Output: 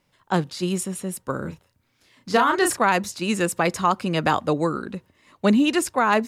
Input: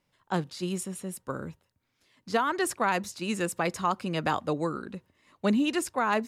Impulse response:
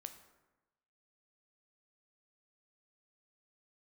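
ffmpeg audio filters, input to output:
-filter_complex "[0:a]asettb=1/sr,asplit=3[a][b][c];[a]atrim=end=1.414[d];[b]atrim=start=1.41:end=2.79,asetpts=PTS-STARTPTS,afade=t=in:d=0.004:c=qsin,afade=t=out:st=1.376:d=0.004:c=qsin,asplit=2[e][f];[f]adelay=34,volume=-5dB[g];[e][g]amix=inputs=2:normalize=0,atrim=end_sample=60858[h];[c]atrim=start=2.786[i];[d][h]acrossfade=d=0.004:c1=hsin:c2=qsin[j];[j][i]acrossfade=d=0.004:c1=qsin:c2=hsin,volume=7dB"

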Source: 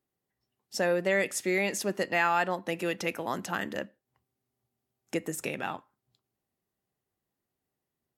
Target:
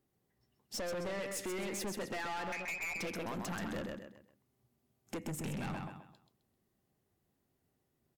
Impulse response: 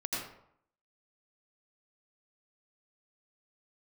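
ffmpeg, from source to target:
-filter_complex "[0:a]lowshelf=f=450:g=7.5,asettb=1/sr,asplit=3[a][b][c];[a]atrim=end=2.524[d];[b]atrim=start=2.52:end=2.96,asetpts=PTS-STARTPTS,afade=t=in:d=0.004:c=qsin,afade=t=out:st=0.436:d=0.004:c=qsin,lowpass=f=2.3k:t=q:w=0.5098,lowpass=f=2.3k:t=q:w=0.6013,lowpass=f=2.3k:t=q:w=0.9,lowpass=f=2.3k:t=q:w=2.563,afreqshift=-2700[e];[c]atrim=start=2.956[f];[d][e]acrossfade=d=0.004:c1=hsin:c2=qsin[g];[g][f]acrossfade=d=0.004:c1=qsin:c2=hsin,asplit=3[h][i][j];[h]afade=t=out:st=5.23:d=0.02[k];[i]asubboost=boost=5.5:cutoff=180,afade=t=in:st=5.23:d=0.02,afade=t=out:st=5.73:d=0.02[l];[j]afade=t=in:st=5.73:d=0.02[m];[k][l][m]amix=inputs=3:normalize=0,acompressor=threshold=-31dB:ratio=6,aecho=1:1:130|260|390|520:0.447|0.138|0.0429|0.0133,aeval=exprs='(tanh(79.4*val(0)+0.2)-tanh(0.2))/79.4':c=same,volume=2dB"

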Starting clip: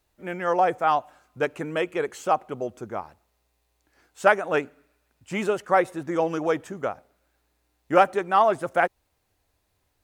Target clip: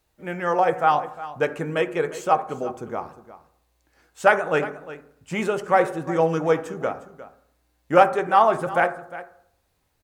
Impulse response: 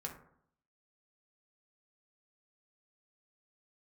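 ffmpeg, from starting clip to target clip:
-filter_complex "[0:a]aecho=1:1:356:0.168,asplit=2[a][b];[1:a]atrim=start_sample=2205[c];[b][c]afir=irnorm=-1:irlink=0,volume=-0.5dB[d];[a][d]amix=inputs=2:normalize=0,volume=-2.5dB"

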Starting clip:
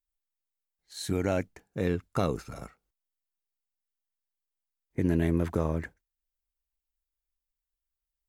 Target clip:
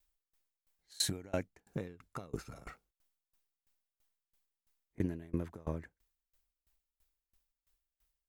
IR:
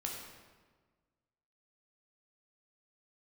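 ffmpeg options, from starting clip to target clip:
-af "acompressor=threshold=-41dB:ratio=8,aeval=exprs='val(0)*pow(10,-28*if(lt(mod(3*n/s,1),2*abs(3)/1000),1-mod(3*n/s,1)/(2*abs(3)/1000),(mod(3*n/s,1)-2*abs(3)/1000)/(1-2*abs(3)/1000))/20)':c=same,volume=14.5dB"

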